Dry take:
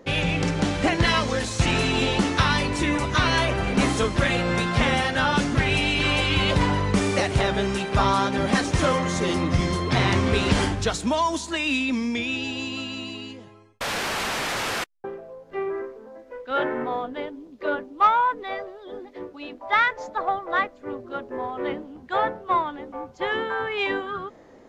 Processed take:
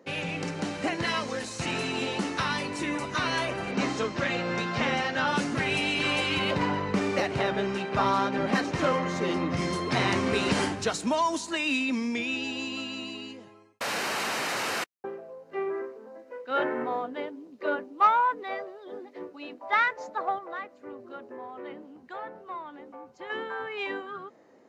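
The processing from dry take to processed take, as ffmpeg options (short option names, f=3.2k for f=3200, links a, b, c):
-filter_complex "[0:a]asettb=1/sr,asplit=3[a][b][c];[a]atrim=end=3.714[d];[b]atrim=start=3.71:end=5.27,asetpts=PTS-STARTPTS,afade=t=in:d=0.004:c=qsin,afade=t=out:st=1.556:d=0.004:c=qsin,lowpass=f=6.7k:w=0.5412,lowpass=f=6.7k:w=1.3066[e];[c]atrim=start=5.266[f];[d][e]acrossfade=d=0.004:c1=hsin:c2=qsin[g];[g][f]acrossfade=d=0.004:c1=qsin:c2=hsin,asettb=1/sr,asplit=3[h][i][j];[h]atrim=end=6.394[k];[i]atrim=start=6.39:end=9.57,asetpts=PTS-STARTPTS,afade=t=in:d=0.004:c=qsin,afade=t=out:st=3.176:d=0.004:c=qsin,adynamicsmooth=sensitivity=1:basefreq=4.5k[l];[j]atrim=start=9.566[m];[k][l]acrossfade=d=0.004:c1=hsin:c2=qsin[n];[n][m]acrossfade=d=0.004:c1=qsin:c2=hsin,asettb=1/sr,asplit=3[o][p][q];[o]atrim=end=20.384[r];[p]atrim=start=20.38:end=23.3,asetpts=PTS-STARTPTS,afade=t=in:d=0.004:c=qsin,afade=t=out:st=2.916:d=0.004:c=qsin,acompressor=threshold=-34dB:ratio=2:attack=3.2:release=140:knee=1:detection=peak[s];[q]atrim=start=23.296[t];[r][s]acrossfade=d=0.004:c1=hsin:c2=qsin[u];[u][t]acrossfade=d=0.004:c1=qsin:c2=hsin,dynaudnorm=f=550:g=17:m=5dB,highpass=170,bandreject=f=3.4k:w=11,volume=-7dB"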